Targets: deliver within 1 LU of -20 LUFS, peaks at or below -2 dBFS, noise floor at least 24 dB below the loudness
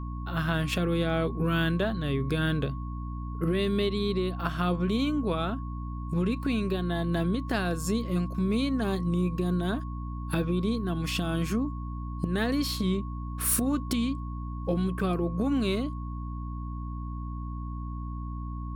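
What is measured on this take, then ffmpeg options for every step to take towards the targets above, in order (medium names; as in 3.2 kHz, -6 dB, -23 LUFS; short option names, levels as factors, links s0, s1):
hum 60 Hz; highest harmonic 300 Hz; hum level -32 dBFS; steady tone 1.1 kHz; tone level -44 dBFS; loudness -29.5 LUFS; peak level -13.0 dBFS; loudness target -20.0 LUFS
-> -af "bandreject=f=60:t=h:w=6,bandreject=f=120:t=h:w=6,bandreject=f=180:t=h:w=6,bandreject=f=240:t=h:w=6,bandreject=f=300:t=h:w=6"
-af "bandreject=f=1100:w=30"
-af "volume=2.99"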